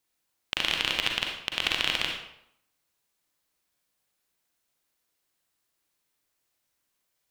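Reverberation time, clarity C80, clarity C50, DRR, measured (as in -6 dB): 0.70 s, 6.0 dB, 2.5 dB, 1.0 dB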